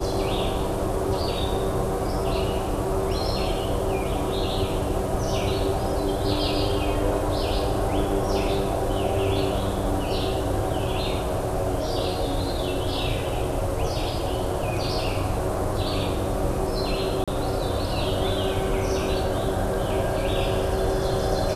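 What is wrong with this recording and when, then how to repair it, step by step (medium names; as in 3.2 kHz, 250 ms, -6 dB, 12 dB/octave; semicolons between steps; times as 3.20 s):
17.24–17.28 s: dropout 36 ms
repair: interpolate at 17.24 s, 36 ms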